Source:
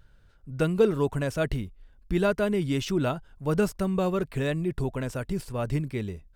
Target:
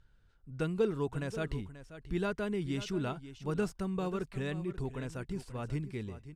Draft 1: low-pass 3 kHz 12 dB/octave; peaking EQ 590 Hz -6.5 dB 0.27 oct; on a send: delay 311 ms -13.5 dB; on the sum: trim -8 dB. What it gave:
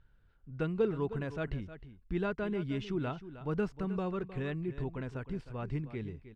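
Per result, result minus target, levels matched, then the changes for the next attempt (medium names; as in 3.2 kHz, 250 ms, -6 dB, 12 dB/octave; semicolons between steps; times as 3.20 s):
8 kHz band -14.5 dB; echo 224 ms early
change: low-pass 9.4 kHz 12 dB/octave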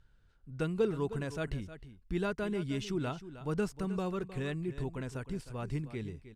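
echo 224 ms early
change: delay 535 ms -13.5 dB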